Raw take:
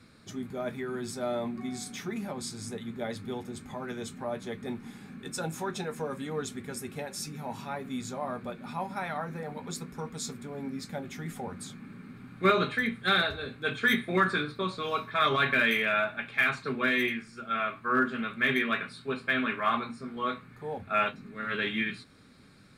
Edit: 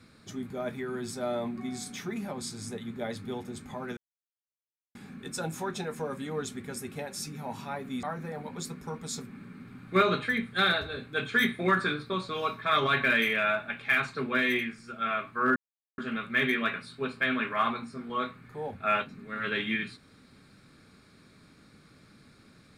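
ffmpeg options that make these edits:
ffmpeg -i in.wav -filter_complex "[0:a]asplit=6[link_01][link_02][link_03][link_04][link_05][link_06];[link_01]atrim=end=3.97,asetpts=PTS-STARTPTS,afade=type=out:start_time=3.966:duration=0.004:curve=hsin[link_07];[link_02]atrim=start=3.97:end=4.95,asetpts=PTS-STARTPTS,volume=0[link_08];[link_03]atrim=start=4.95:end=8.032,asetpts=PTS-STARTPTS,afade=type=in:duration=0.004:curve=hsin[link_09];[link_04]atrim=start=9.138:end=10.412[link_10];[link_05]atrim=start=11.788:end=18.05,asetpts=PTS-STARTPTS,afade=type=out:start_time=6.258:duration=0.004:curve=hsin,apad=pad_dur=0.42[link_11];[link_06]atrim=start=18.05,asetpts=PTS-STARTPTS,afade=type=in:duration=0.004:curve=hsin[link_12];[link_07][link_08][link_09]concat=n=3:v=0:a=1[link_13];[link_13][link_10]acrossfade=duration=0.004:curve1=hsin:curve2=hsin[link_14];[link_11][link_12]concat=n=2:v=0:a=1[link_15];[link_14][link_15]acrossfade=duration=0.004:curve1=hsin:curve2=hsin" out.wav

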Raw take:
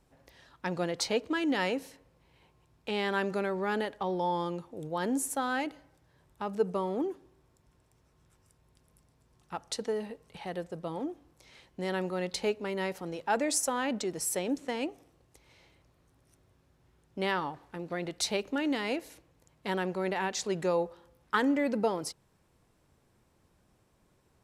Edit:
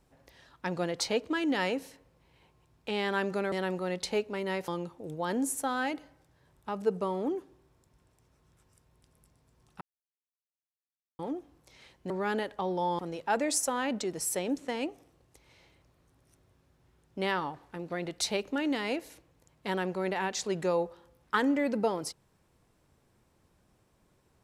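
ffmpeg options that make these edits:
ffmpeg -i in.wav -filter_complex "[0:a]asplit=7[link_01][link_02][link_03][link_04][link_05][link_06][link_07];[link_01]atrim=end=3.522[link_08];[link_02]atrim=start=11.828:end=12.992[link_09];[link_03]atrim=start=4.408:end=9.54,asetpts=PTS-STARTPTS,afade=type=out:start_time=5.128:duration=0.004:curve=hsin[link_10];[link_04]atrim=start=9.54:end=10.92,asetpts=PTS-STARTPTS,volume=0[link_11];[link_05]atrim=start=10.92:end=11.832,asetpts=PTS-STARTPTS,afade=type=in:duration=0.004:curve=hsin[link_12];[link_06]atrim=start=3.518:end=4.412[link_13];[link_07]atrim=start=12.988[link_14];[link_08][link_09]acrossfade=duration=0.004:curve1=hsin:curve2=hsin[link_15];[link_10][link_11][link_12]concat=n=3:v=0:a=1[link_16];[link_15][link_16]acrossfade=duration=0.004:curve1=hsin:curve2=hsin[link_17];[link_17][link_13]acrossfade=duration=0.004:curve1=hsin:curve2=hsin[link_18];[link_18][link_14]acrossfade=duration=0.004:curve1=hsin:curve2=hsin" out.wav

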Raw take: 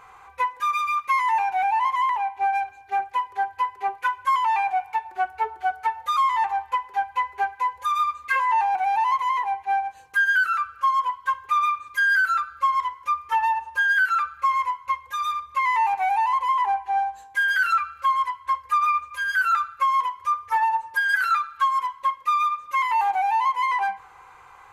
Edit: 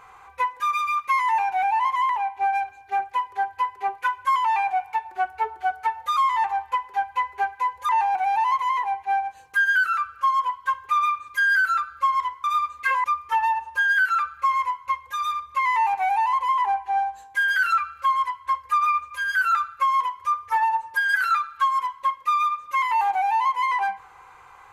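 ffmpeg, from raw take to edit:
ffmpeg -i in.wav -filter_complex "[0:a]asplit=4[link_01][link_02][link_03][link_04];[link_01]atrim=end=7.892[link_05];[link_02]atrim=start=8.488:end=13.042[link_06];[link_03]atrim=start=7.888:end=8.492[link_07];[link_04]atrim=start=13.038[link_08];[link_05][link_06]acrossfade=duration=0.004:curve1=hsin:curve2=hsin[link_09];[link_09][link_07]acrossfade=duration=0.004:curve1=hsin:curve2=hsin[link_10];[link_10][link_08]acrossfade=duration=0.004:curve1=hsin:curve2=hsin" out.wav

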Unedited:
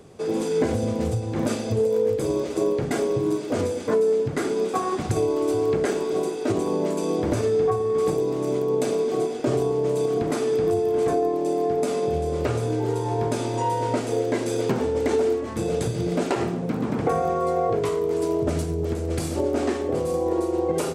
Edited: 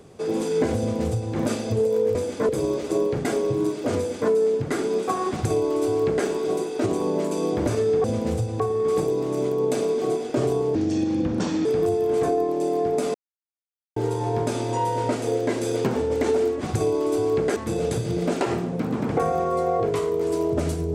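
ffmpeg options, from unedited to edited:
ffmpeg -i in.wav -filter_complex "[0:a]asplit=11[link_01][link_02][link_03][link_04][link_05][link_06][link_07][link_08][link_09][link_10][link_11];[link_01]atrim=end=2.152[link_12];[link_02]atrim=start=3.628:end=3.972[link_13];[link_03]atrim=start=2.148:end=7.702[link_14];[link_04]atrim=start=0.778:end=1.342[link_15];[link_05]atrim=start=7.698:end=9.854[link_16];[link_06]atrim=start=9.85:end=10.5,asetpts=PTS-STARTPTS,asetrate=31752,aresample=44100,atrim=end_sample=39812,asetpts=PTS-STARTPTS[link_17];[link_07]atrim=start=10.496:end=11.99,asetpts=PTS-STARTPTS,afade=type=out:start_time=1.49:duration=0.004:curve=hsin[link_18];[link_08]atrim=start=11.99:end=12.81,asetpts=PTS-STARTPTS,volume=0[link_19];[link_09]atrim=start=12.81:end=15.462,asetpts=PTS-STARTPTS,afade=type=in:duration=0.004:curve=hsin[link_20];[link_10]atrim=start=4.968:end=5.922[link_21];[link_11]atrim=start=15.458[link_22];[link_12][link_13]acrossfade=duration=0.004:curve1=hsin:curve2=hsin[link_23];[link_23][link_14]acrossfade=duration=0.004:curve1=hsin:curve2=hsin[link_24];[link_24][link_15]acrossfade=duration=0.004:curve1=hsin:curve2=hsin[link_25];[link_25][link_16]acrossfade=duration=0.004:curve1=hsin:curve2=hsin[link_26];[link_26][link_17]acrossfade=duration=0.004:curve1=hsin:curve2=hsin[link_27];[link_18][link_19][link_20]concat=n=3:v=0:a=1[link_28];[link_27][link_28]acrossfade=duration=0.004:curve1=hsin:curve2=hsin[link_29];[link_29][link_21]acrossfade=duration=0.004:curve1=hsin:curve2=hsin[link_30];[link_30][link_22]acrossfade=duration=0.004:curve1=hsin:curve2=hsin" out.wav

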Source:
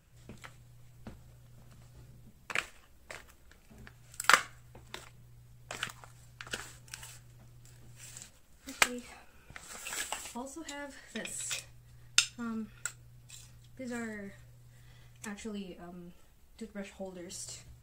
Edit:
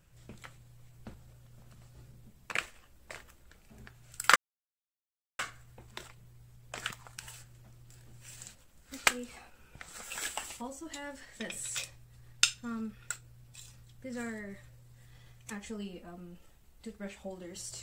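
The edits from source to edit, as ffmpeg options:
ffmpeg -i in.wav -filter_complex "[0:a]asplit=3[link_01][link_02][link_03];[link_01]atrim=end=4.36,asetpts=PTS-STARTPTS,afade=type=out:start_time=4.356:duration=0.004:curve=hsin,apad=pad_dur=1.03[link_04];[link_02]atrim=start=4.36:end=6.152,asetpts=PTS-STARTPTS,afade=type=in:duration=0.004:curve=hsin[link_05];[link_03]atrim=start=6.928[link_06];[link_04][link_05]concat=n=2:v=0:a=1[link_07];[link_07][link_06]acrossfade=duration=0.004:curve1=hsin:curve2=hsin" out.wav

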